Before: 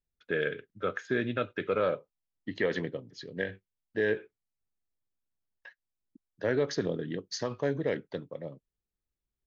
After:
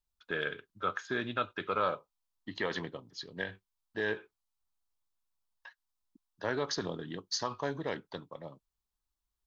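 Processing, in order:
graphic EQ with 10 bands 125 Hz −8 dB, 250 Hz −5 dB, 500 Hz −10 dB, 1,000 Hz +9 dB, 2,000 Hz −8 dB, 4,000 Hz +3 dB
level +2 dB

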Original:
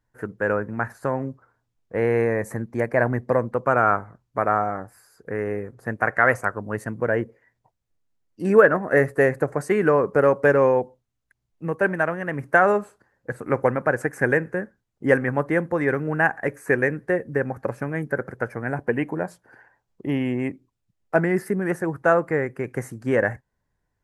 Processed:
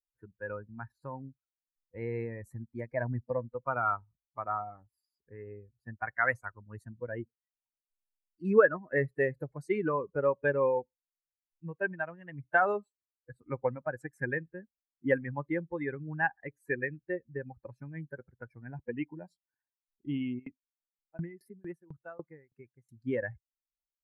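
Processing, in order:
spectral dynamics exaggerated over time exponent 2
flat-topped bell 7,800 Hz −11 dB
0:20.38–0:22.91: tremolo with a ramp in dB decaying 6.5 Hz → 2.5 Hz, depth 28 dB
level −5.5 dB

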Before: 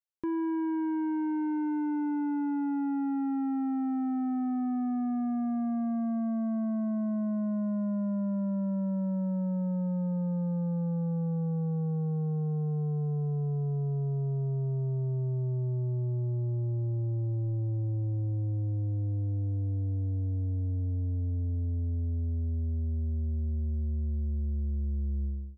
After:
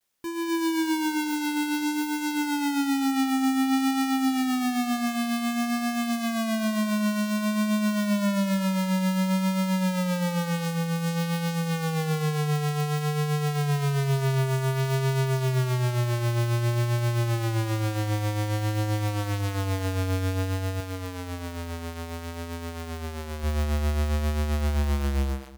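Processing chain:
each half-wave held at its own peak
0:20.80–0:23.44: low-shelf EQ 95 Hz −10.5 dB
automatic gain control gain up to 9.5 dB
brickwall limiter −19 dBFS, peak gain reduction 4.5 dB
amplitude tremolo 7.5 Hz, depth 44%
bit-depth reduction 12 bits, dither triangular
pitch vibrato 0.54 Hz 47 cents
double-tracking delay 15 ms −13 dB
single-tap delay 245 ms −15.5 dB
level −4.5 dB

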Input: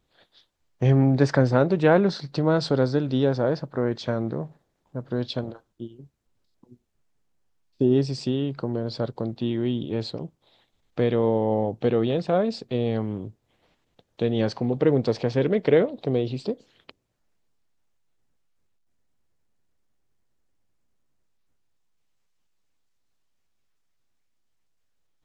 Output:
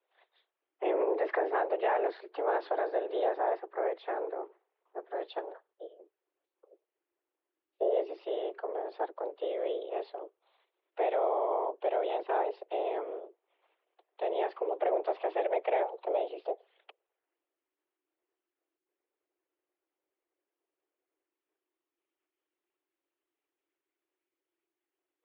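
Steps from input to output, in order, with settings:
random phases in short frames
single-sideband voice off tune +180 Hz 200–3,000 Hz
brickwall limiter −13 dBFS, peak gain reduction 6 dB
level −6.5 dB

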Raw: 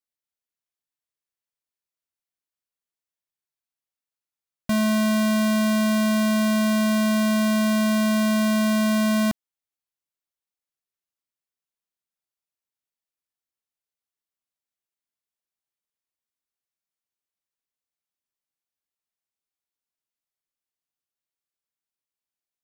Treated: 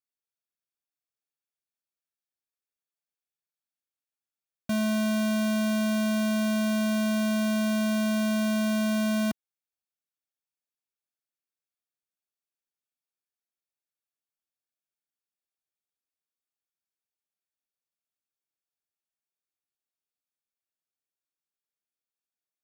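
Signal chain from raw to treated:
notch comb filter 1,000 Hz
level −4.5 dB

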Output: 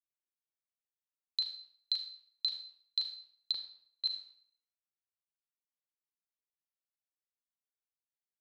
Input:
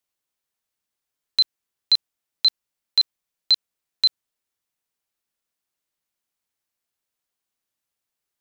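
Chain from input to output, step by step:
0:01.92–0:02.45: inverse Chebyshev band-stop filter 180–540 Hz, stop band 50 dB
noise gate with hold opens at −11 dBFS
0:03.52–0:04.06: low-pass filter 1,800 Hz 12 dB per octave
downward compressor 10 to 1, threshold −29 dBFS, peak gain reduction 15.5 dB
convolution reverb RT60 0.60 s, pre-delay 34 ms, DRR 4.5 dB
level −2.5 dB

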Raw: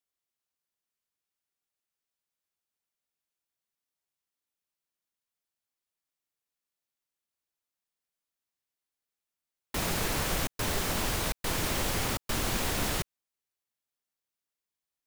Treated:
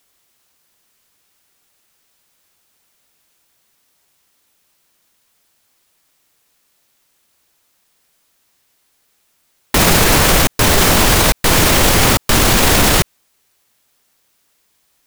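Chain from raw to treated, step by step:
boost into a limiter +29 dB
level −1 dB

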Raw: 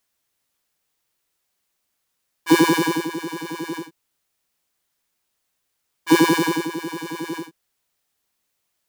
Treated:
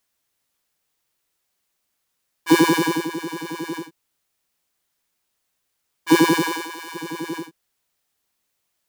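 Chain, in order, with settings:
0:06.41–0:06.94: high-pass filter 410 Hz → 870 Hz 12 dB per octave

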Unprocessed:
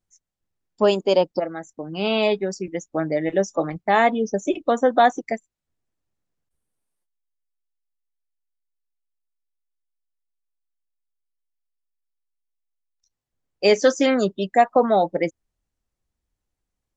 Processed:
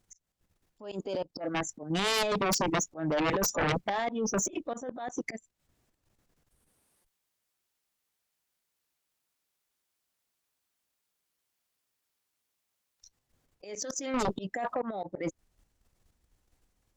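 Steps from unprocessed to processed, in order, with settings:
compressor whose output falls as the input rises −26 dBFS, ratio −1
dynamic equaliser 6,300 Hz, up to +3 dB, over −42 dBFS, Q 2.2
output level in coarse steps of 9 dB
volume swells 354 ms
harmonic generator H 3 −10 dB, 6 −26 dB, 7 −6 dB, 8 −30 dB, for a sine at −15.5 dBFS
level −2.5 dB

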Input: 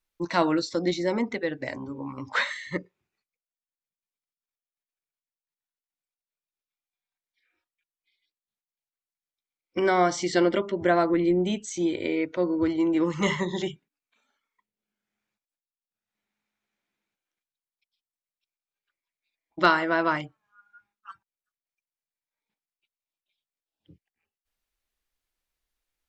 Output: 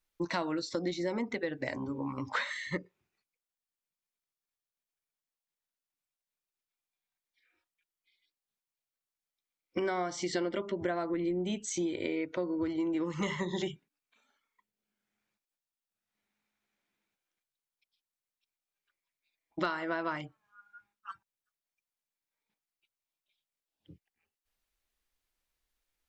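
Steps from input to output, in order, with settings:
downward compressor, threshold −30 dBFS, peak gain reduction 15 dB

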